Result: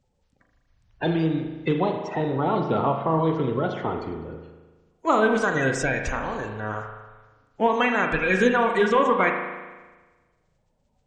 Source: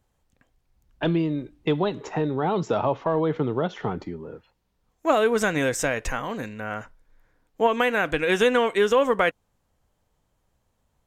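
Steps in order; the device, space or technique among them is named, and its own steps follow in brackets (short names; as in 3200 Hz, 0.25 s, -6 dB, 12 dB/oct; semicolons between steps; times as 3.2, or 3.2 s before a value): clip after many re-uploads (LPF 7100 Hz 24 dB/oct; bin magnitudes rounded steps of 30 dB); 2.41–3.08 steep low-pass 4700 Hz 48 dB/oct; spring tank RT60 1.3 s, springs 37 ms, chirp 65 ms, DRR 4 dB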